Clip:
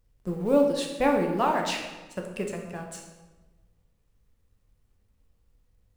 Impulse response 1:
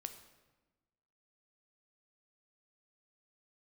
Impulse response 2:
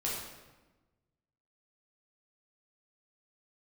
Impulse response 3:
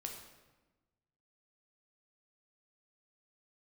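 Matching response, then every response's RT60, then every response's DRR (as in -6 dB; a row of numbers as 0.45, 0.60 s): 3; 1.2, 1.2, 1.2 s; 7.5, -6.0, 1.5 dB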